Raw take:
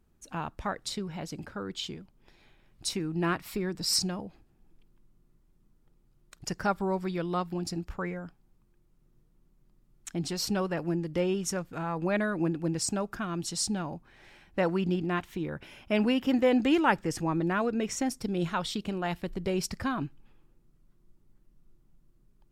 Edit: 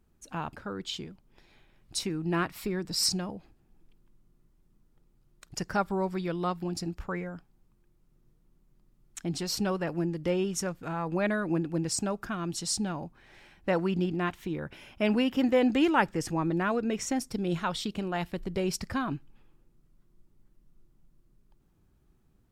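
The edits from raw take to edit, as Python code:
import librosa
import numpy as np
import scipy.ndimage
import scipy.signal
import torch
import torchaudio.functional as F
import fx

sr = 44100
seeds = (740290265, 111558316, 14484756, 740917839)

y = fx.edit(x, sr, fx.cut(start_s=0.53, length_s=0.9), tone=tone)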